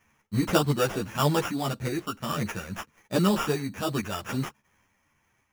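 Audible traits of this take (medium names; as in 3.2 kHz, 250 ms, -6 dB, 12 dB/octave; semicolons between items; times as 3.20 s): random-step tremolo; aliases and images of a low sample rate 4.2 kHz, jitter 0%; a shimmering, thickened sound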